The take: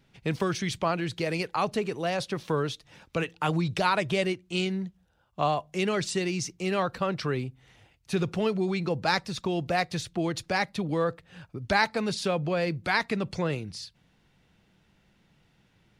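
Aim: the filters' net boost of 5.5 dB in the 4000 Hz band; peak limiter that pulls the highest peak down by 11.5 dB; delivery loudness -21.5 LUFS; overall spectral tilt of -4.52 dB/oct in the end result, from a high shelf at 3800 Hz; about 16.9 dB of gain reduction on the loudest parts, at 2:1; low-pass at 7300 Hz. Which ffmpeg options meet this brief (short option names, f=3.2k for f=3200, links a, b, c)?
-af "lowpass=7.3k,highshelf=f=3.8k:g=5,equalizer=f=4k:t=o:g=4,acompressor=threshold=-50dB:ratio=2,volume=23dB,alimiter=limit=-11dB:level=0:latency=1"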